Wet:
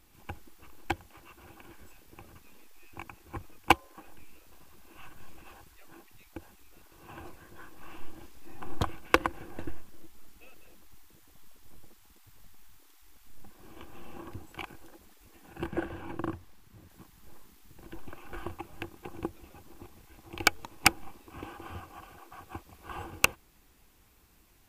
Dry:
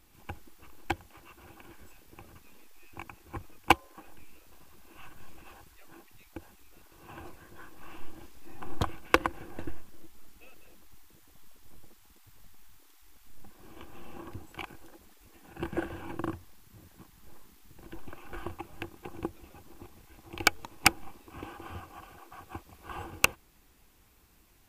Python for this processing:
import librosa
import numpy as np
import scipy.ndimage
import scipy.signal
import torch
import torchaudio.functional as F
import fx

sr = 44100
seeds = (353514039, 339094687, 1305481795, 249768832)

y = fx.high_shelf(x, sr, hz=4500.0, db=-5.5, at=(15.66, 16.9))